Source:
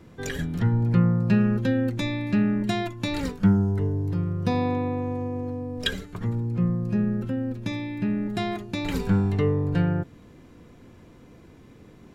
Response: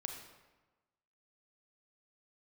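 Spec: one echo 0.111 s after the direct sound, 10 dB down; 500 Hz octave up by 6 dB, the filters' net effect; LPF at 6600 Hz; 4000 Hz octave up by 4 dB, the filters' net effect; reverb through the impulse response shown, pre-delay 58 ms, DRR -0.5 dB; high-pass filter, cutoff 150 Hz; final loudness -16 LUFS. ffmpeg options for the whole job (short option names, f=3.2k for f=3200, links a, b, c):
-filter_complex "[0:a]highpass=150,lowpass=6.6k,equalizer=f=500:t=o:g=7,equalizer=f=4k:t=o:g=5,aecho=1:1:111:0.316,asplit=2[a][b];[1:a]atrim=start_sample=2205,adelay=58[c];[b][c]afir=irnorm=-1:irlink=0,volume=2dB[d];[a][d]amix=inputs=2:normalize=0,volume=4.5dB"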